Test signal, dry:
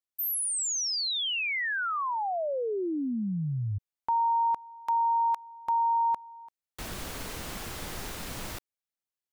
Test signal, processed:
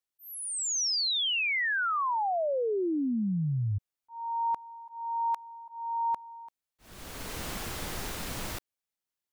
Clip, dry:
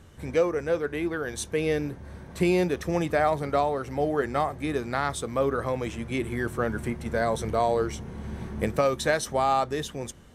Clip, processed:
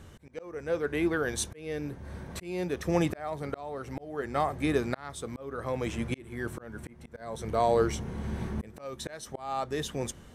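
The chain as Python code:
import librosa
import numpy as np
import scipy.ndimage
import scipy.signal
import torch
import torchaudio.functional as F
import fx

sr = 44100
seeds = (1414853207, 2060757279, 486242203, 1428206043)

y = fx.auto_swell(x, sr, attack_ms=649.0)
y = y * 10.0 ** (1.5 / 20.0)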